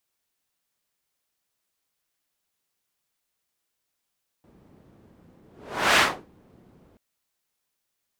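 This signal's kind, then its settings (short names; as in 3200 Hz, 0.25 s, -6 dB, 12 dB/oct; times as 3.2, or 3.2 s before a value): whoosh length 2.53 s, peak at 1.54, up 0.52 s, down 0.32 s, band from 220 Hz, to 1800 Hz, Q 0.89, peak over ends 38 dB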